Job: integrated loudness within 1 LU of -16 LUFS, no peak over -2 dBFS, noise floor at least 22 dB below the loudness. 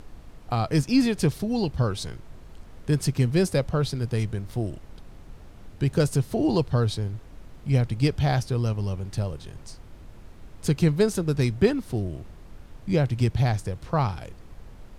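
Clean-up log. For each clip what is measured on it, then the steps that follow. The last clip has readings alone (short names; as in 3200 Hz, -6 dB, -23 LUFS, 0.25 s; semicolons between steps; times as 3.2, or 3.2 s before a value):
noise floor -46 dBFS; noise floor target -48 dBFS; loudness -25.5 LUFS; peak -7.5 dBFS; loudness target -16.0 LUFS
-> noise print and reduce 6 dB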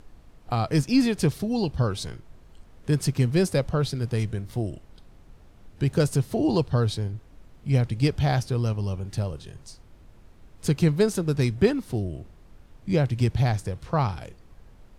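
noise floor -52 dBFS; loudness -25.5 LUFS; peak -7.5 dBFS; loudness target -16.0 LUFS
-> gain +9.5 dB; limiter -2 dBFS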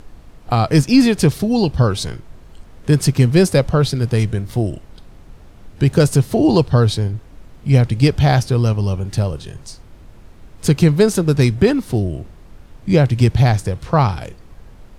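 loudness -16.0 LUFS; peak -2.0 dBFS; noise floor -42 dBFS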